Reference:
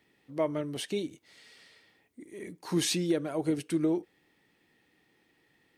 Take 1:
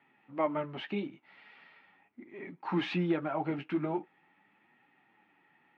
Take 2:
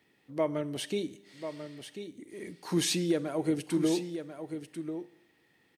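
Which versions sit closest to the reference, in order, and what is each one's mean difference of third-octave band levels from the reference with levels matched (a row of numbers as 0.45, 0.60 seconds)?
2, 1; 3.5, 6.0 decibels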